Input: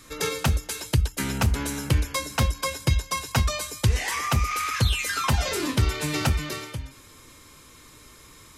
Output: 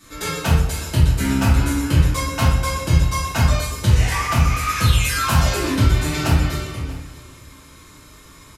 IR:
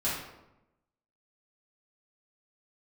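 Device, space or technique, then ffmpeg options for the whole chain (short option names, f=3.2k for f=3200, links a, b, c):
bathroom: -filter_complex "[0:a]asettb=1/sr,asplit=3[a][b][c];[a]atrim=end=4.684[d];[b]atrim=start=4.68:end=5.49,asetpts=PTS-STARTPTS,afade=t=in:d=0.004:c=qsin,afade=t=out:st=0.806:d=0.004:c=qsin,highshelf=f=7.2k:g=7[e];[c]atrim=start=5.486[f];[d][e]acrossfade=d=0.004:c1=hsin:c2=qsin[g];[g][f]acrossfade=d=0.004:c1=qsin:c2=hsin,aecho=1:1:636:0.106[h];[1:a]atrim=start_sample=2205[i];[h][i]afir=irnorm=-1:irlink=0,volume=-3dB"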